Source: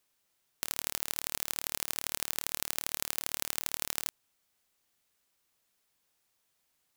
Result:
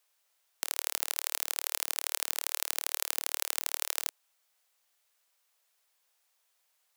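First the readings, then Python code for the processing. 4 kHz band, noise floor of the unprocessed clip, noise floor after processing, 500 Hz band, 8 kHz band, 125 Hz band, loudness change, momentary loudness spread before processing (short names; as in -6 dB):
+2.0 dB, -77 dBFS, -75 dBFS, -0.5 dB, +2.0 dB, under -35 dB, +2.0 dB, 2 LU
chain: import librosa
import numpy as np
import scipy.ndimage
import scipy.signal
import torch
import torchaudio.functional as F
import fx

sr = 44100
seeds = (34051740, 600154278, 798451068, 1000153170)

y = scipy.signal.sosfilt(scipy.signal.butter(4, 500.0, 'highpass', fs=sr, output='sos'), x)
y = F.gain(torch.from_numpy(y), 2.0).numpy()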